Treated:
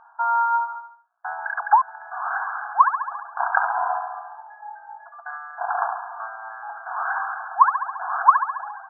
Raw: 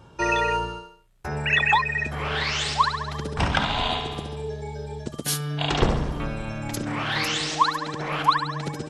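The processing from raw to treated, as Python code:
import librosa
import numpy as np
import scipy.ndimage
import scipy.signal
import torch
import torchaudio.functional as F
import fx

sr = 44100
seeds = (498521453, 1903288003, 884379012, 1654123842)

y = fx.brickwall_bandpass(x, sr, low_hz=660.0, high_hz=1700.0)
y = y * librosa.db_to_amplitude(5.5)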